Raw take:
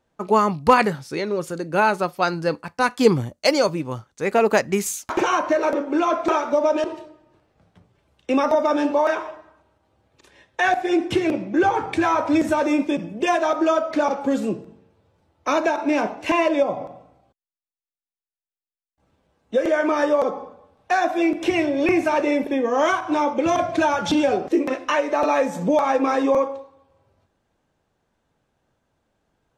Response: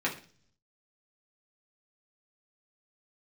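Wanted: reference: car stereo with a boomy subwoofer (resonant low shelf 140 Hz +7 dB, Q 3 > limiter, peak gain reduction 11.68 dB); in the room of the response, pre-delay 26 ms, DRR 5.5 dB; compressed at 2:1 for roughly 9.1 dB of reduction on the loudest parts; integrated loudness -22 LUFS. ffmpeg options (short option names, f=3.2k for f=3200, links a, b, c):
-filter_complex "[0:a]acompressor=threshold=-26dB:ratio=2,asplit=2[a][b];[1:a]atrim=start_sample=2205,adelay=26[c];[b][c]afir=irnorm=-1:irlink=0,volume=-14dB[d];[a][d]amix=inputs=2:normalize=0,lowshelf=f=140:t=q:w=3:g=7,volume=8.5dB,alimiter=limit=-13dB:level=0:latency=1"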